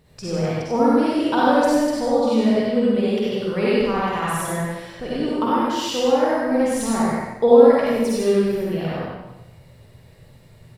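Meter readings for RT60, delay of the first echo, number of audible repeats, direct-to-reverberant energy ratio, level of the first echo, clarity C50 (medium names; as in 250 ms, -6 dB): 1.0 s, 95 ms, 1, -8.5 dB, -2.0 dB, -7.5 dB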